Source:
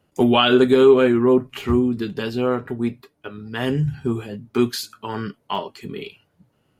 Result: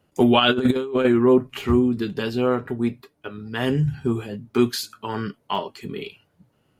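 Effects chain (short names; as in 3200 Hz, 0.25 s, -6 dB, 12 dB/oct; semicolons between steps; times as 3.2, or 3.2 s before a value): 0.39–1.05 negative-ratio compressor -19 dBFS, ratio -0.5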